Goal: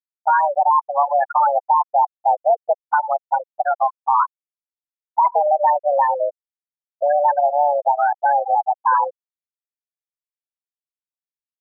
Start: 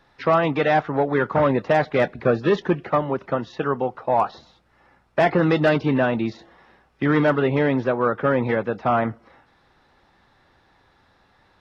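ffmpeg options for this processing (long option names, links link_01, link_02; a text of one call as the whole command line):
ffmpeg -i in.wav -filter_complex "[0:a]equalizer=frequency=600:width=0.44:gain=12.5,asplit=2[link_01][link_02];[link_02]aecho=0:1:101:0.1[link_03];[link_01][link_03]amix=inputs=2:normalize=0,acompressor=threshold=-10dB:ratio=2,asoftclip=type=hard:threshold=-7dB,highpass=frequency=170:width_type=q:width=0.5412,highpass=frequency=170:width_type=q:width=1.307,lowpass=frequency=2600:width_type=q:width=0.5176,lowpass=frequency=2600:width_type=q:width=0.7071,lowpass=frequency=2600:width_type=q:width=1.932,afreqshift=290,afftfilt=real='re*gte(hypot(re,im),0.708)':imag='im*gte(hypot(re,im),0.708)':win_size=1024:overlap=0.75,volume=-3dB" out.wav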